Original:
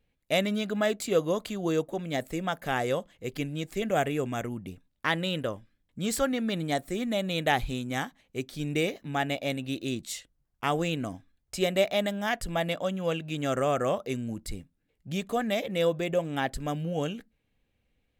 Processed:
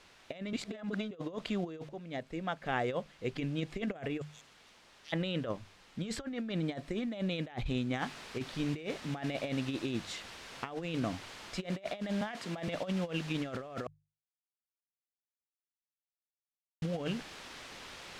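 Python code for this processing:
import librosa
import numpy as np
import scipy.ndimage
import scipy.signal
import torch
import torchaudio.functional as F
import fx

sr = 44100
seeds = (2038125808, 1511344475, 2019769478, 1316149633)

y = fx.cheby2_highpass(x, sr, hz=1300.0, order=4, stop_db=60, at=(4.2, 5.12), fade=0.02)
y = fx.noise_floor_step(y, sr, seeds[0], at_s=7.99, before_db=-54, after_db=-42, tilt_db=0.0)
y = fx.highpass(y, sr, hz=170.0, slope=24, at=(12.21, 12.68))
y = fx.edit(y, sr, fx.reverse_span(start_s=0.53, length_s=0.58),
    fx.fade_in_from(start_s=1.89, length_s=1.68, floor_db=-13.5),
    fx.silence(start_s=13.87, length_s=2.95), tone=tone)
y = scipy.signal.sosfilt(scipy.signal.butter(2, 3800.0, 'lowpass', fs=sr, output='sos'), y)
y = fx.hum_notches(y, sr, base_hz=50, count=3)
y = fx.over_compress(y, sr, threshold_db=-32.0, ratio=-0.5)
y = y * 10.0 ** (-3.0 / 20.0)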